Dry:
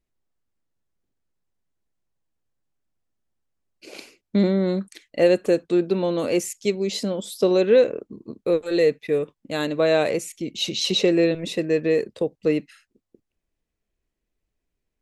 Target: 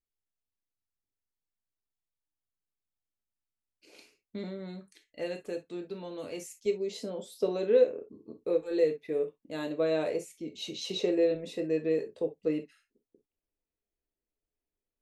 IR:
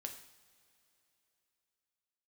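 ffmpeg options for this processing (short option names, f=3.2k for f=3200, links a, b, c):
-filter_complex "[0:a]asetnsamples=n=441:p=0,asendcmd='6.66 equalizer g 6',equalizer=f=450:t=o:w=2.3:g=-3[a];[1:a]atrim=start_sample=2205,afade=t=out:st=0.16:d=0.01,atrim=end_sample=7497,asetrate=70560,aresample=44100[b];[a][b]afir=irnorm=-1:irlink=0,volume=-7dB"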